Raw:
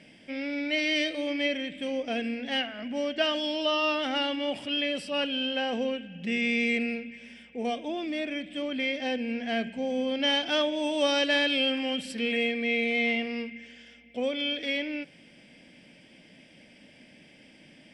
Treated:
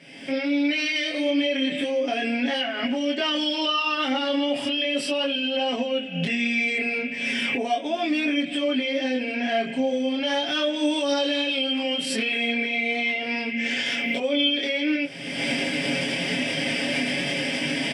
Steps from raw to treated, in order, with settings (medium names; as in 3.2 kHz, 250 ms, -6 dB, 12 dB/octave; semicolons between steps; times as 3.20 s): recorder AGC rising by 41 dB/s; high-pass 230 Hz 6 dB/octave; comb 7.3 ms, depth 82%; peak limiter -21 dBFS, peak gain reduction 9.5 dB; chorus voices 2, 0.36 Hz, delay 24 ms, depth 4 ms; trim +7.5 dB